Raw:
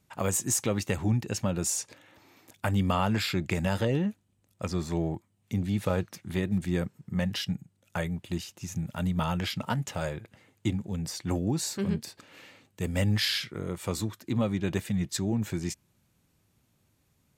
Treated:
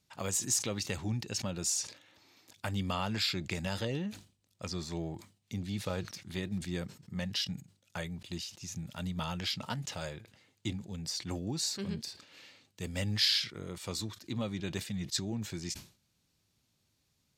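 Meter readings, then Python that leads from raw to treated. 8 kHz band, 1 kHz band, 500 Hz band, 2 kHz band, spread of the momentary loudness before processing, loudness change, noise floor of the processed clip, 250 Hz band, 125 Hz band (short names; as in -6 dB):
-2.0 dB, -7.5 dB, -8.0 dB, -5.0 dB, 9 LU, -5.0 dB, -76 dBFS, -8.5 dB, -8.5 dB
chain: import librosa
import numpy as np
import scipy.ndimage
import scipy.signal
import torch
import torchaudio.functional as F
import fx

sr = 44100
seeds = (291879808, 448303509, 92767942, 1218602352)

y = fx.peak_eq(x, sr, hz=4600.0, db=11.5, octaves=1.4)
y = fx.sustainer(y, sr, db_per_s=150.0)
y = y * 10.0 ** (-8.5 / 20.0)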